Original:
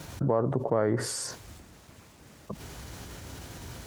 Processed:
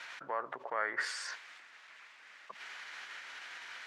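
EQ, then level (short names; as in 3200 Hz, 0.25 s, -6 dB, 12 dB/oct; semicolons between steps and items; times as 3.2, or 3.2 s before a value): ladder band-pass 2300 Hz, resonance 35%; high shelf 2900 Hz -8 dB; +18.0 dB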